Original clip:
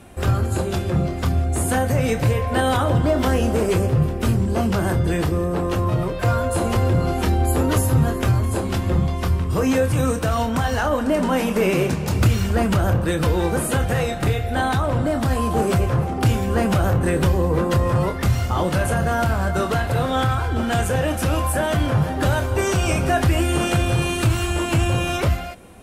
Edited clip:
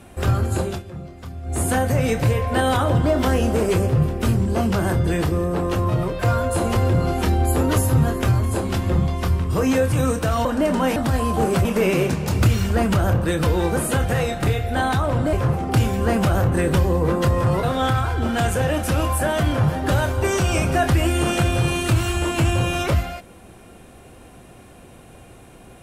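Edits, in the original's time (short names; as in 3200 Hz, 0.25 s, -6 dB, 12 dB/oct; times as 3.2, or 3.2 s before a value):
0.65–1.6 dip -14 dB, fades 0.18 s
10.45–10.94 cut
15.13–15.82 move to 11.45
18.12–19.97 cut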